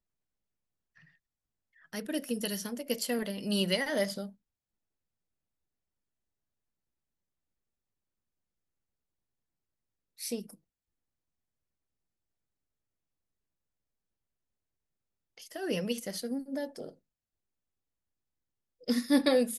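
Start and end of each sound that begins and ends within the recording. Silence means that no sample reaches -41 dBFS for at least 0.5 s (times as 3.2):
1.93–4.27
10.2–10.51
15.38–16.89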